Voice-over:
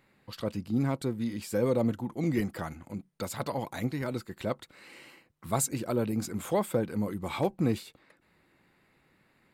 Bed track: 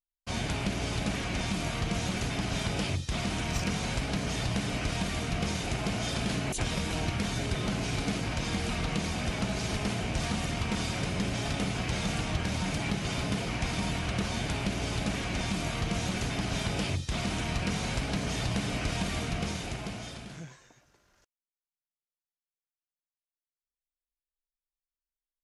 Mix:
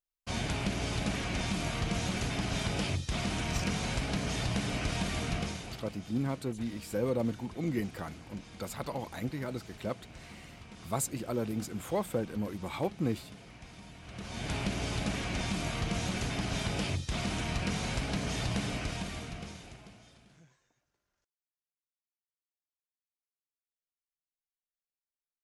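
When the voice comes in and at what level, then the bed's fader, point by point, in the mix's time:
5.40 s, -4.0 dB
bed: 5.34 s -1.5 dB
5.99 s -19 dB
13.98 s -19 dB
14.53 s -2 dB
18.64 s -2 dB
20.04 s -17 dB

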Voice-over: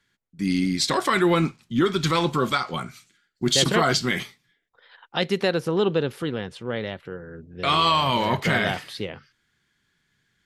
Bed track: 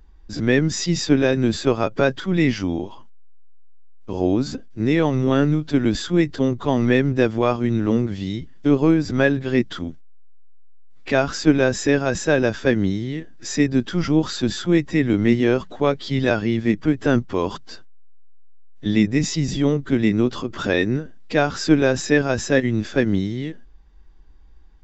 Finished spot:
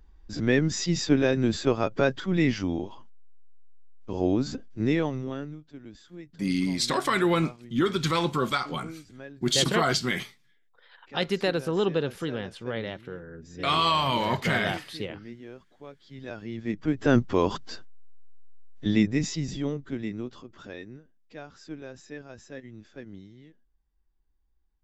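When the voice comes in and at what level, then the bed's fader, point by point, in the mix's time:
6.00 s, -3.5 dB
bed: 4.90 s -5 dB
5.71 s -26 dB
15.98 s -26 dB
17.20 s -1 dB
18.61 s -1 dB
21.03 s -24 dB

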